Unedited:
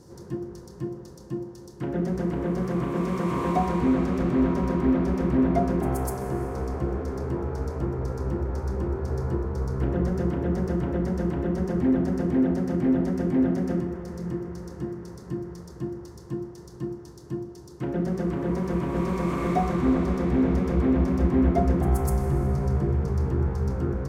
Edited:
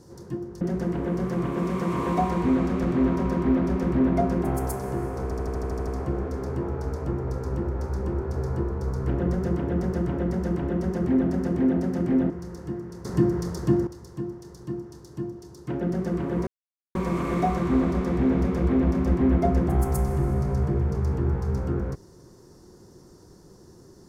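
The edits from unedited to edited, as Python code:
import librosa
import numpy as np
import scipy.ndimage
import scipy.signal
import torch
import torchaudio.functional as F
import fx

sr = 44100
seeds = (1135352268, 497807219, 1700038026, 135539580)

y = fx.edit(x, sr, fx.cut(start_s=0.61, length_s=1.38),
    fx.stutter(start_s=6.61, slice_s=0.08, count=9),
    fx.cut(start_s=13.04, length_s=1.39),
    fx.clip_gain(start_s=15.18, length_s=0.82, db=11.0),
    fx.silence(start_s=18.6, length_s=0.48), tone=tone)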